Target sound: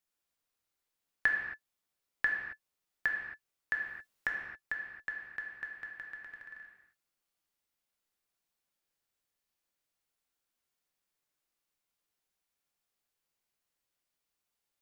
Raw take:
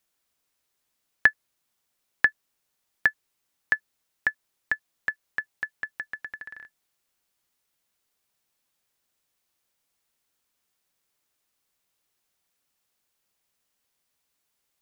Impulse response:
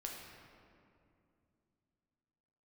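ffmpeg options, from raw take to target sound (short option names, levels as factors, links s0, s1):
-filter_complex "[0:a]asettb=1/sr,asplit=3[s0][s1][s2];[s0]atrim=end=3.744[s3];[s1]atrim=start=3.74:end=4.27,asetpts=PTS-STARTPTS,afade=t=in:d=0.004:c=qsin,afade=t=out:st=0.526:d=0.004:c=qsin,acontrast=62[s4];[s2]atrim=start=4.266[s5];[s3][s4]acrossfade=d=0.004:c1=hsin:c2=qsin[s6];[s6][s5]acrossfade=d=0.004:c1=qsin:c2=hsin[s7];[1:a]atrim=start_sample=2205,afade=t=out:st=0.33:d=0.01,atrim=end_sample=14994[s8];[s7][s8]afir=irnorm=-1:irlink=0,volume=0.501"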